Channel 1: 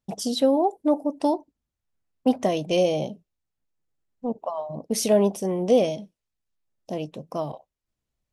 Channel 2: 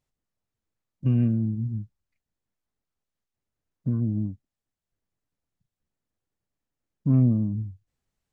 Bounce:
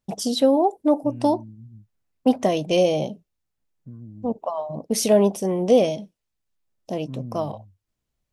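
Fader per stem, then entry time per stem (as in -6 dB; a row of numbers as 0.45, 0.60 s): +2.5, -15.0 dB; 0.00, 0.00 s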